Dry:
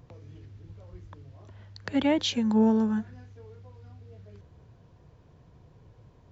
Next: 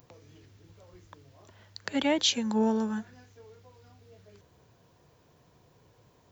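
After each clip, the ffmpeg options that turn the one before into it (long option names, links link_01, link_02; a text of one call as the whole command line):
ffmpeg -i in.wav -af "aemphasis=mode=production:type=bsi" out.wav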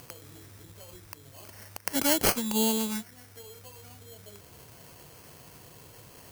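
ffmpeg -i in.wav -af "acompressor=mode=upward:threshold=-40dB:ratio=2.5,acrusher=samples=12:mix=1:aa=0.000001,crystalizer=i=3.5:c=0,volume=-2dB" out.wav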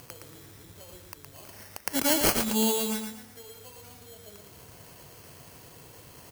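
ffmpeg -i in.wav -af "aecho=1:1:115|230|345|460:0.531|0.175|0.0578|0.0191" out.wav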